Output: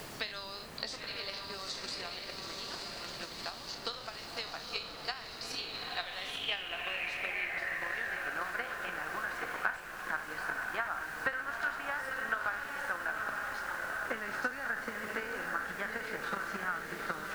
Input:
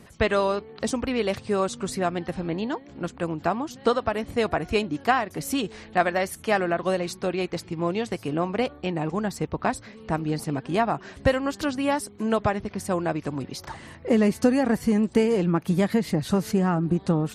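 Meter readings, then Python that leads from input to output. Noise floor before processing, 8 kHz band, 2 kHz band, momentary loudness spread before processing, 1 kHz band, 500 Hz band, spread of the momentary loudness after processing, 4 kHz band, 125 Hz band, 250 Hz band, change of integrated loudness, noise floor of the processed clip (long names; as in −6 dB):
−48 dBFS, −10.5 dB, −1.0 dB, 8 LU, −10.5 dB, −19.5 dB, 6 LU, −1.5 dB, −25.5 dB, −25.5 dB, −11.0 dB, −46 dBFS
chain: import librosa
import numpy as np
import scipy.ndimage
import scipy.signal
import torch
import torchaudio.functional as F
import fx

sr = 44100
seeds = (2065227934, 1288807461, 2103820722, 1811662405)

y = fx.spec_trails(x, sr, decay_s=0.34)
y = fx.echo_diffused(y, sr, ms=895, feedback_pct=59, wet_db=-3.5)
y = fx.transient(y, sr, attack_db=11, sustain_db=7)
y = fx.filter_sweep_bandpass(y, sr, from_hz=4600.0, to_hz=1500.0, start_s=5.59, end_s=8.37, q=6.7)
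y = fx.dmg_noise_colour(y, sr, seeds[0], colour='pink', level_db=-57.0)
y = fx.band_squash(y, sr, depth_pct=70)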